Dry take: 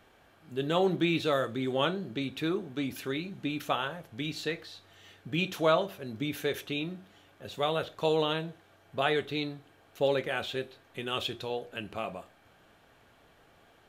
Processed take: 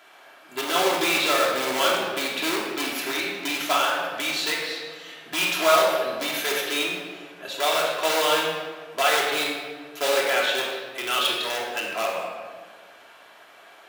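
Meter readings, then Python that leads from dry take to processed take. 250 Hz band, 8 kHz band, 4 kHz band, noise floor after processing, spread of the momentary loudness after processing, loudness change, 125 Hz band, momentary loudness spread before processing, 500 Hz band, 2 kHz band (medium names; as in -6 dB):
0.0 dB, +20.5 dB, +11.5 dB, -50 dBFS, 12 LU, +8.5 dB, -10.0 dB, 13 LU, +5.5 dB, +12.0 dB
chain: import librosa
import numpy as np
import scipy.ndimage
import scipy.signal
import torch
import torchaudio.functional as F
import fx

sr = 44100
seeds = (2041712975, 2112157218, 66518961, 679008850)

p1 = (np.mod(10.0 ** (26.5 / 20.0) * x + 1.0, 2.0) - 1.0) / 10.0 ** (26.5 / 20.0)
p2 = x + (p1 * 10.0 ** (-3.5 / 20.0))
p3 = scipy.signal.sosfilt(scipy.signal.butter(2, 650.0, 'highpass', fs=sr, output='sos'), p2)
p4 = fx.room_shoebox(p3, sr, seeds[0], volume_m3=1700.0, walls='mixed', distance_m=3.0)
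y = p4 * 10.0 ** (4.5 / 20.0)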